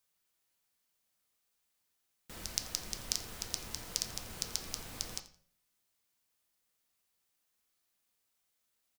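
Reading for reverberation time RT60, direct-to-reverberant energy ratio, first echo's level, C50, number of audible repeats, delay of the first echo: 0.45 s, 6.0 dB, -18.5 dB, 12.0 dB, 2, 85 ms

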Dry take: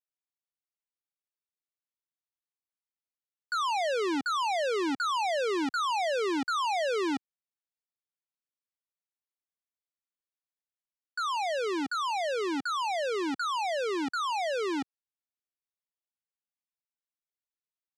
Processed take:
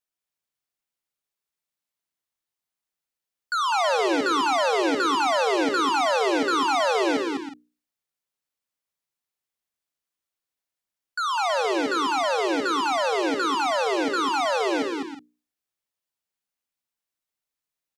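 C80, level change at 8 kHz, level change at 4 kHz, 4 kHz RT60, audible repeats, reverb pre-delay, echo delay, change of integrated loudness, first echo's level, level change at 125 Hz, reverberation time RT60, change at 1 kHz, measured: no reverb, +7.0 dB, +7.0 dB, no reverb, 5, no reverb, 54 ms, +6.5 dB, -15.5 dB, no reading, no reverb, +7.0 dB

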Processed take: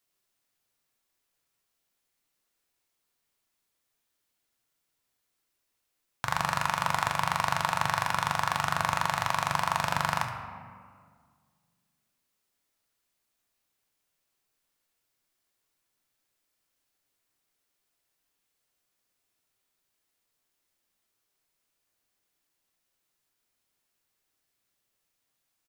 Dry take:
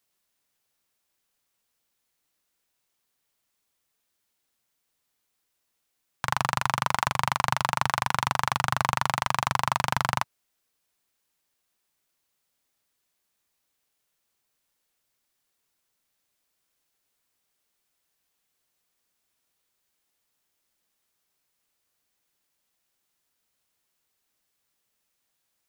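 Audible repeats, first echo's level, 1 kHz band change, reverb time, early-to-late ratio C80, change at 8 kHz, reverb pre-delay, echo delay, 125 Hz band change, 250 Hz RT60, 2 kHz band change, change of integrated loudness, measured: 1, -11.5 dB, -2.0 dB, 1.9 s, 7.0 dB, -2.5 dB, 3 ms, 71 ms, -3.5 dB, 2.5 s, -1.5 dB, -2.0 dB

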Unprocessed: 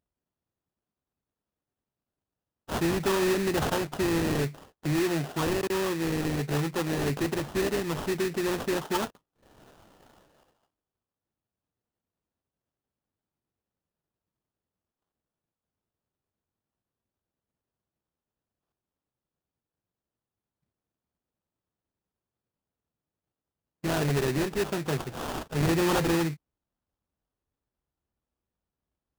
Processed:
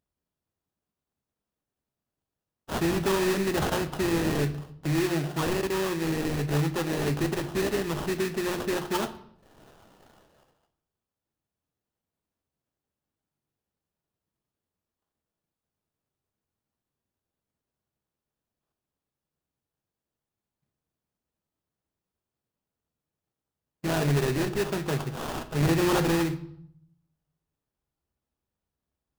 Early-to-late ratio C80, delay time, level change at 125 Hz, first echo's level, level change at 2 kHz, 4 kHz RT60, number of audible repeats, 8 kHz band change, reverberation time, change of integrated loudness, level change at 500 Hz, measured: 17.0 dB, no echo, +2.0 dB, no echo, +0.5 dB, 0.55 s, no echo, +0.5 dB, 0.70 s, +0.5 dB, +0.5 dB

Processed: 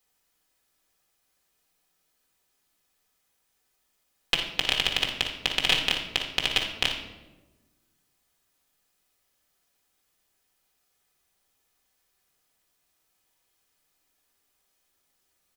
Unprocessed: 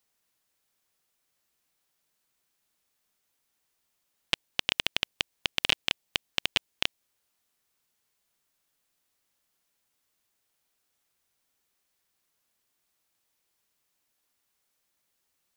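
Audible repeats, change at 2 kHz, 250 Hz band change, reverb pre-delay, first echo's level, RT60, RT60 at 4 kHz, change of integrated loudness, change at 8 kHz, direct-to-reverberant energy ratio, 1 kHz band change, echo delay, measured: 1, +4.0 dB, +4.5 dB, 4 ms, -8.0 dB, 1.2 s, 0.70 s, +4.0 dB, +4.0 dB, -0.5 dB, +5.0 dB, 57 ms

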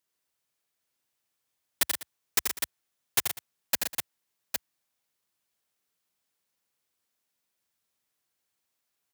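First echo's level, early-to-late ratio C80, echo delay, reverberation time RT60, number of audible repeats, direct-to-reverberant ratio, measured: -5.5 dB, no reverb, 83 ms, no reverb, 4, no reverb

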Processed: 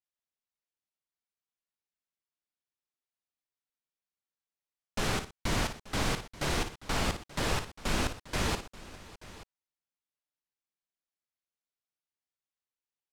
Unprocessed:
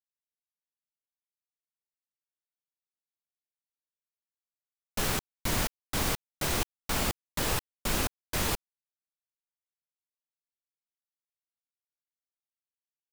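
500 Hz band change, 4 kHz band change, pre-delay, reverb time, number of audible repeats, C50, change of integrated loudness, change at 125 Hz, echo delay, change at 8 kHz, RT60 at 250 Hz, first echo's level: +0.5 dB, -1.0 dB, no reverb, no reverb, 4, no reverb, -2.0 dB, +0.5 dB, 56 ms, -5.0 dB, no reverb, -9.5 dB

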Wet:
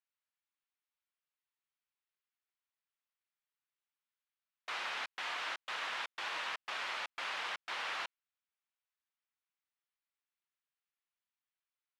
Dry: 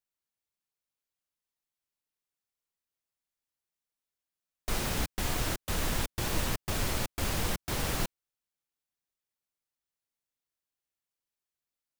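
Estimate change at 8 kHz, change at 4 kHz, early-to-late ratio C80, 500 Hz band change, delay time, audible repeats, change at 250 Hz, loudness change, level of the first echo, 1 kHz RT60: -18.0 dB, -4.0 dB, no reverb, -13.0 dB, no echo, no echo, -26.5 dB, -6.5 dB, no echo, no reverb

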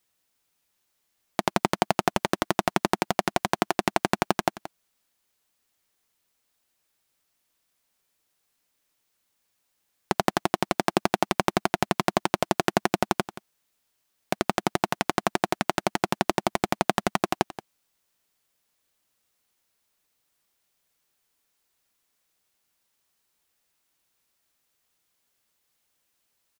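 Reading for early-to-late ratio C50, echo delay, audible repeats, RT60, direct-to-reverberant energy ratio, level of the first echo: no reverb, 177 ms, 1, no reverb, no reverb, -15.0 dB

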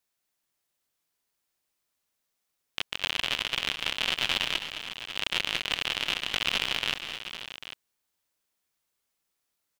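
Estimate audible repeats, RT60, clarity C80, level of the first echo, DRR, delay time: 4, no reverb, no reverb, -17.5 dB, no reverb, 142 ms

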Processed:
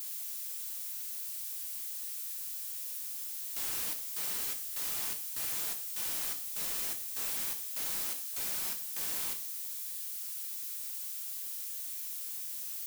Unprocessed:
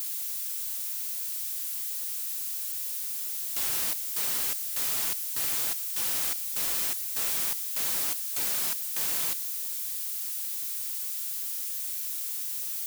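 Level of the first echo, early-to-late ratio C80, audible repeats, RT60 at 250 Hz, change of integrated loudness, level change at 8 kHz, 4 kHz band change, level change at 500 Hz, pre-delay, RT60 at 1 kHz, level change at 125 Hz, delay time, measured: no echo, 16.0 dB, no echo, 0.40 s, -6.5 dB, -6.5 dB, -6.5 dB, -6.0 dB, 5 ms, 0.40 s, -6.0 dB, no echo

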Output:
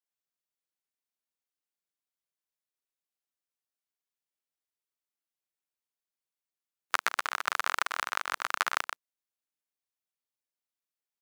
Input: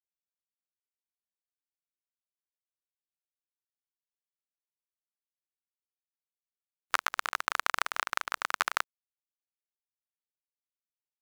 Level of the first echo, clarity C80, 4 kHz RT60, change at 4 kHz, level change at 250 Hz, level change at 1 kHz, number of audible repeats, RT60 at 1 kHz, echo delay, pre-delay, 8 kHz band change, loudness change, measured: -7.5 dB, no reverb, no reverb, +0.5 dB, 0.0 dB, +0.5 dB, 1, no reverb, 124 ms, no reverb, +0.5 dB, +0.5 dB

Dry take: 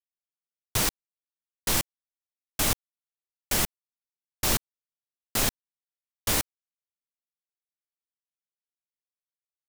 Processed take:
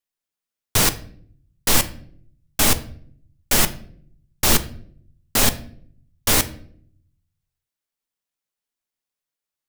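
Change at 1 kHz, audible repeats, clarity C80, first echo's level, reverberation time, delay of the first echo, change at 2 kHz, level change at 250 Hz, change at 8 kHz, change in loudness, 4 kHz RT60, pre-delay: +8.0 dB, no echo, 19.5 dB, no echo, 0.60 s, no echo, +8.0 dB, +8.5 dB, +8.0 dB, +7.5 dB, 0.40 s, 4 ms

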